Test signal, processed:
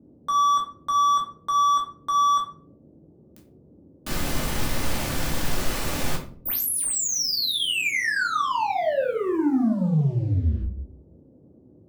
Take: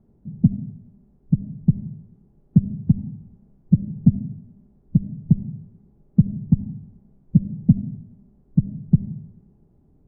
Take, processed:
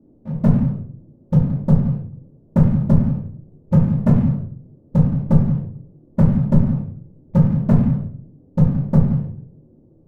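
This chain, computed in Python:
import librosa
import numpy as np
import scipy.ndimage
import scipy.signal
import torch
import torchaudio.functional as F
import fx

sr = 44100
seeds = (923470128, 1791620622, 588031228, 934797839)

y = fx.leveller(x, sr, passes=3)
y = fx.dmg_noise_band(y, sr, seeds[0], low_hz=67.0, high_hz=440.0, level_db=-51.0)
y = fx.room_shoebox(y, sr, seeds[1], volume_m3=360.0, walls='furnished', distance_m=2.5)
y = F.gain(torch.from_numpy(y), -8.0).numpy()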